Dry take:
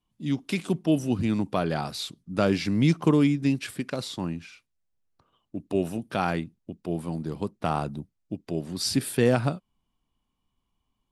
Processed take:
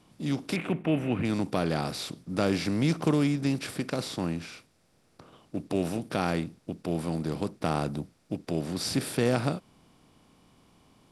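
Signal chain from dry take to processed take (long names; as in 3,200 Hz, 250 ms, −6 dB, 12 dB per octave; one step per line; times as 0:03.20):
compressor on every frequency bin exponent 0.6
0:00.56–0:01.25: high shelf with overshoot 3,500 Hz −12.5 dB, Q 3
level −6 dB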